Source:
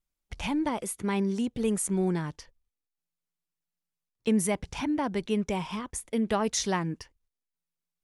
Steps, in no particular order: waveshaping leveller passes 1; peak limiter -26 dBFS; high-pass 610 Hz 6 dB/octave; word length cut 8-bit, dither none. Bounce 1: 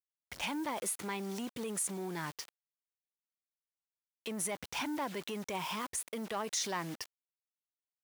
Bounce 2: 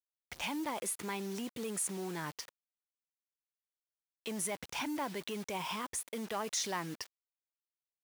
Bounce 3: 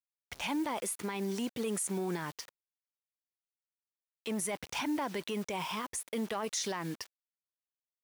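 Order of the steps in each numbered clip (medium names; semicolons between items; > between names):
word length cut > peak limiter > waveshaping leveller > high-pass; waveshaping leveller > peak limiter > word length cut > high-pass; waveshaping leveller > word length cut > high-pass > peak limiter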